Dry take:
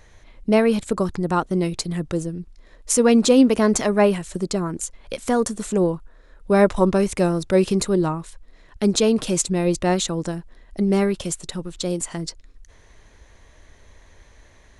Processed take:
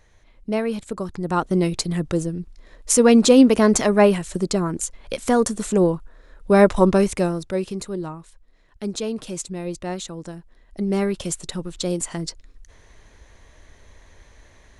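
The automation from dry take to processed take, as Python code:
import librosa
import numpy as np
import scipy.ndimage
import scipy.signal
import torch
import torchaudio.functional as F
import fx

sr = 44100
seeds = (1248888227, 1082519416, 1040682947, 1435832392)

y = fx.gain(x, sr, db=fx.line((1.07, -6.5), (1.5, 2.0), (7.01, 2.0), (7.68, -9.0), (10.2, -9.0), (11.37, 0.5)))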